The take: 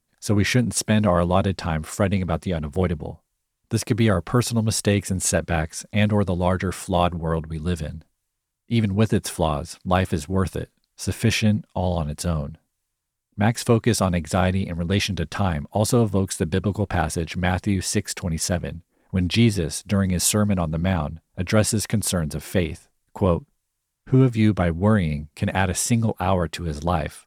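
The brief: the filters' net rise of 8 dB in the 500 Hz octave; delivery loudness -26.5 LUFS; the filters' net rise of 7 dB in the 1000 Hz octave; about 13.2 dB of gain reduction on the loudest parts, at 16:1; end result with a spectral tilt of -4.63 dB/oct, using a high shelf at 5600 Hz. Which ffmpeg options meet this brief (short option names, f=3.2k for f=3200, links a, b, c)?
-af "equalizer=f=500:t=o:g=8,equalizer=f=1k:t=o:g=6,highshelf=f=5.6k:g=5,acompressor=threshold=-21dB:ratio=16,volume=1dB"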